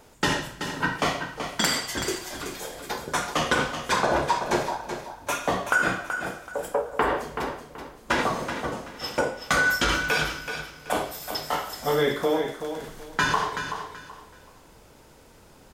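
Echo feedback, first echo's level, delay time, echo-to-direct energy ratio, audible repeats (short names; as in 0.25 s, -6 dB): 26%, -8.5 dB, 0.379 s, -8.0 dB, 3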